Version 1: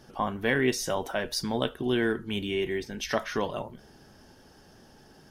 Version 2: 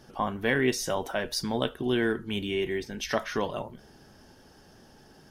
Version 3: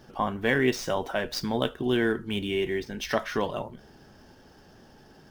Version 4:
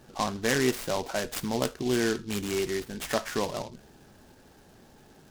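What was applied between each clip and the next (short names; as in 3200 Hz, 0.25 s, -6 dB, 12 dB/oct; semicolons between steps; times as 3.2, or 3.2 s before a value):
nothing audible
median filter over 5 samples; gain +1.5 dB
noise-modulated delay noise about 4000 Hz, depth 0.065 ms; gain -1.5 dB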